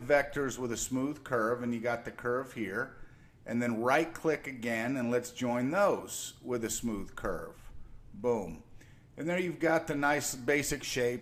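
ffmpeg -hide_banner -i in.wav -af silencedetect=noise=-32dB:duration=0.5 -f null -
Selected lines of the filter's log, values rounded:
silence_start: 2.84
silence_end: 3.49 | silence_duration: 0.65
silence_start: 7.44
silence_end: 8.24 | silence_duration: 0.80
silence_start: 8.46
silence_end: 9.20 | silence_duration: 0.74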